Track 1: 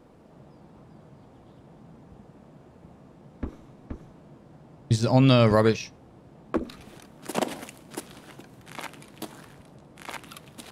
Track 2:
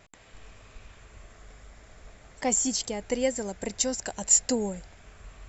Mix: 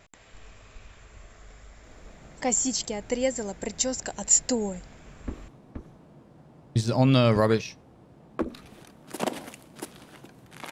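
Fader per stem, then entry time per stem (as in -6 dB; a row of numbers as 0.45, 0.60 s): -2.0, +0.5 dB; 1.85, 0.00 s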